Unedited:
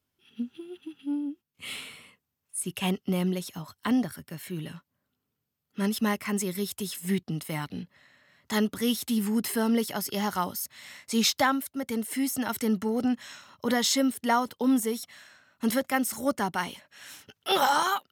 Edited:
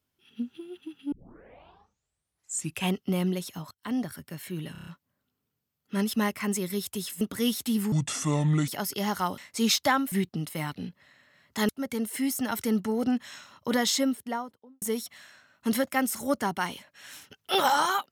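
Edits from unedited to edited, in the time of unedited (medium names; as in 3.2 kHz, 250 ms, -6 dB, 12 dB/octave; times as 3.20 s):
1.12 s: tape start 1.76 s
3.71–4.16 s: fade in linear, from -20.5 dB
4.72 s: stutter 0.03 s, 6 plays
7.06–8.63 s: move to 11.66 s
9.34–9.84 s: speed 66%
10.54–10.92 s: delete
13.80–14.79 s: studio fade out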